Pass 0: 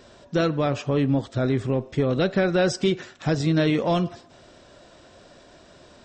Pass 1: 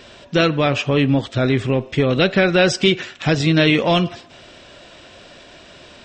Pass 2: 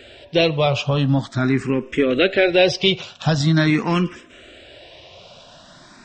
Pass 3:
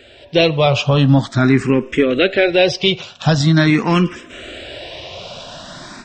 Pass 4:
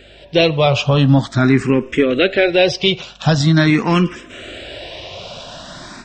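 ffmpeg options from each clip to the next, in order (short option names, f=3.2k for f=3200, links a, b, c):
-af "equalizer=f=2.7k:w=1.2:g=10.5,volume=5dB"
-filter_complex "[0:a]asplit=2[a][b];[b]afreqshift=0.44[c];[a][c]amix=inputs=2:normalize=1,volume=1.5dB"
-af "dynaudnorm=f=150:g=3:m=12.5dB,volume=-1dB"
-af "aeval=exprs='val(0)+0.00355*(sin(2*PI*50*n/s)+sin(2*PI*2*50*n/s)/2+sin(2*PI*3*50*n/s)/3+sin(2*PI*4*50*n/s)/4+sin(2*PI*5*50*n/s)/5)':c=same"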